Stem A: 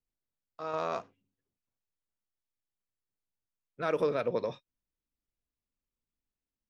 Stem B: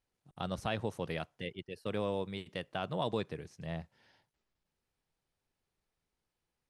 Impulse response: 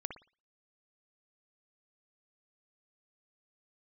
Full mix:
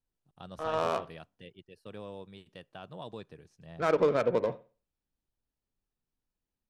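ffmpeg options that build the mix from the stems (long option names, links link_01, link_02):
-filter_complex "[0:a]adynamicsmooth=sensitivity=5.5:basefreq=680,volume=1.5dB,asplit=2[link_01][link_02];[link_02]volume=-7.5dB[link_03];[1:a]bandreject=frequency=2100:width=8.9,volume=-9dB[link_04];[2:a]atrim=start_sample=2205[link_05];[link_03][link_05]afir=irnorm=-1:irlink=0[link_06];[link_01][link_04][link_06]amix=inputs=3:normalize=0"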